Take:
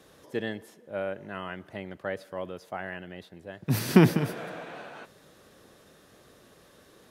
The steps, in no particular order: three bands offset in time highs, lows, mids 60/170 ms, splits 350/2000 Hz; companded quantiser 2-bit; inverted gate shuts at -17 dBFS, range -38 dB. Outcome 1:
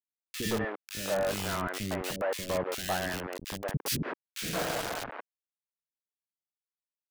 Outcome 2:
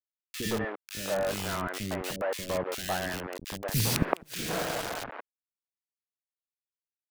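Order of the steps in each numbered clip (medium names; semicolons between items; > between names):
inverted gate > companded quantiser > three bands offset in time; companded quantiser > inverted gate > three bands offset in time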